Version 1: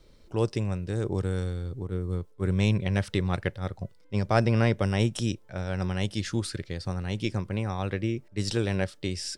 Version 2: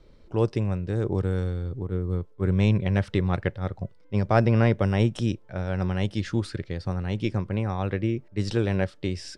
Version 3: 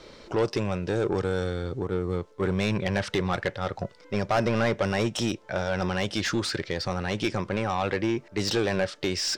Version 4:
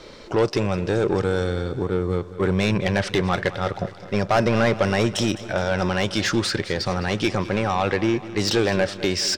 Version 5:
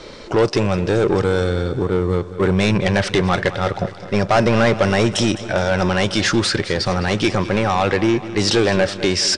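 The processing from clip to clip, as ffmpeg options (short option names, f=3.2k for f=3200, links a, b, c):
-af "aemphasis=mode=reproduction:type=75kf,volume=3dB"
-filter_complex "[0:a]acompressor=threshold=-37dB:ratio=1.5,equalizer=f=6.5k:t=o:w=1.3:g=8.5,asplit=2[a][b];[b]highpass=f=720:p=1,volume=23dB,asoftclip=type=tanh:threshold=-14dB[c];[a][c]amix=inputs=2:normalize=0,lowpass=f=3.6k:p=1,volume=-6dB"
-af "aecho=1:1:209|418|627|836|1045|1254:0.158|0.0935|0.0552|0.0326|0.0192|0.0113,volume=5dB"
-filter_complex "[0:a]asplit=2[a][b];[b]asoftclip=type=hard:threshold=-21.5dB,volume=-5.5dB[c];[a][c]amix=inputs=2:normalize=0,volume=2dB" -ar 22050 -c:a aac -b:a 96k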